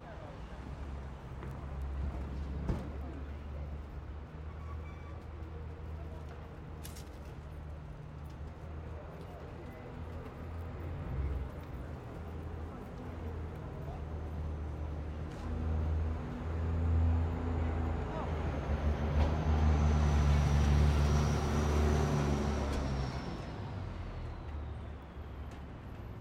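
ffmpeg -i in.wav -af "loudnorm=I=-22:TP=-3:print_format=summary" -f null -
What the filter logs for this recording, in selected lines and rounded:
Input Integrated:    -37.5 LUFS
Input True Peak:     -17.2 dBTP
Input LRA:            14.7 LU
Input Threshold:     -47.6 LUFS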